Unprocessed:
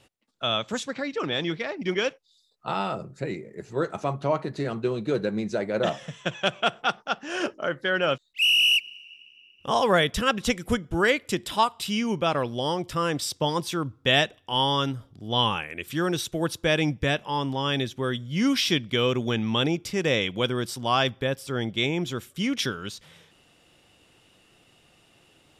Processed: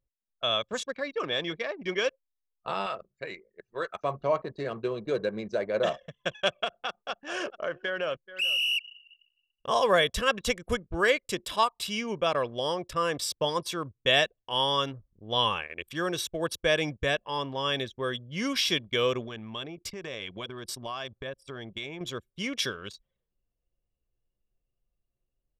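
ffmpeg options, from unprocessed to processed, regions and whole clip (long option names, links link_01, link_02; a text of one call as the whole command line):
ffmpeg -i in.wav -filter_complex "[0:a]asettb=1/sr,asplit=3[link_01][link_02][link_03];[link_01]atrim=end=2.864[link_04];[link_02]atrim=start=2.86:end=4.04,asetpts=PTS-STARTPTS,afade=type=in:duration=0.004:curve=qsin,afade=type=out:start_time=1.176:duration=0.004:curve=qsin,lowpass=frequency=2500:poles=1,tiltshelf=frequency=930:gain=-9.5[link_05];[link_03]atrim=start=4.036[link_06];[link_04][link_05]acrossfade=duration=0.004:curve1=hsin:curve2=qsin[link_07];[link_07][link_06]acrossfade=duration=0.004:curve1=qsin:curve2=hsin,asettb=1/sr,asplit=3[link_08][link_09][link_10];[link_08]atrim=end=6.644[link_11];[link_09]atrim=start=6.64:end=8.81,asetpts=PTS-STARTPTS,afade=type=in:duration=0.004:curve=qsin,afade=type=out:start_time=2.166:duration=0.004:curve=qsin,aecho=1:1:429:0.15,atrim=end_sample=95697,acompressor=threshold=-24dB:ratio=5:attack=3.2:release=140:knee=1:detection=peak[link_12];[link_10]atrim=start=8.806[link_13];[link_11][link_12]acrossfade=duration=0.004:curve1=hsin:curve2=qsin[link_14];[link_14][link_13]acrossfade=duration=0.004:curve1=qsin:curve2=hsin,asettb=1/sr,asplit=3[link_15][link_16][link_17];[link_15]atrim=end=19.244[link_18];[link_16]atrim=start=19.24:end=22.01,asetpts=PTS-STARTPTS,afade=type=in:duration=0.004:curve=qsin,afade=type=out:start_time=2.766:duration=0.004:curve=qsin,bandreject=frequency=500:width=7.4,acompressor=threshold=-28dB:ratio=20:attack=3.2:release=140:knee=1:detection=peak[link_19];[link_17]atrim=start=22.006[link_20];[link_18][link_19]acrossfade=duration=0.004:curve1=hsin:curve2=qsin[link_21];[link_21][link_20]acrossfade=duration=0.004:curve1=qsin:curve2=hsin,anlmdn=1.58,equalizer=frequency=130:width=0.92:gain=-7.5,aecho=1:1:1.8:0.39,volume=-2.5dB" out.wav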